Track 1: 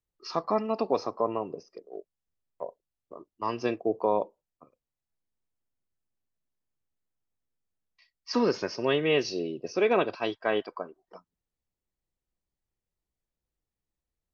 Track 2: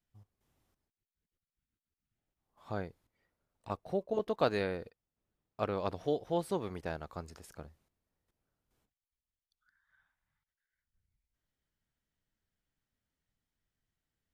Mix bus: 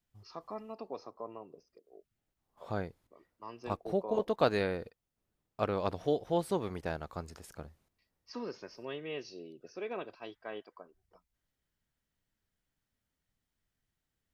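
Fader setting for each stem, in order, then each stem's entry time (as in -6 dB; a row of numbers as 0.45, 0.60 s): -15.5, +2.0 dB; 0.00, 0.00 s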